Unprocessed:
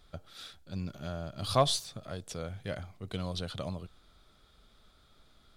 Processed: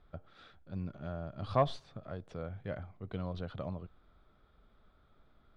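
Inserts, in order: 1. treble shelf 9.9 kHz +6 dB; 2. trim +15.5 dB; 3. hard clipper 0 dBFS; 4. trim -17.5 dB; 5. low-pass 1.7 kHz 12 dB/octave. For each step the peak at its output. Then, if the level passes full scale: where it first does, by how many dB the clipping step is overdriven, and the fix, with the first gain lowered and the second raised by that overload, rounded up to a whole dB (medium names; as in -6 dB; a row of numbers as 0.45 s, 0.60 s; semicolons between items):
-12.0 dBFS, +3.5 dBFS, 0.0 dBFS, -17.5 dBFS, -17.0 dBFS; step 2, 3.5 dB; step 2 +11.5 dB, step 4 -13.5 dB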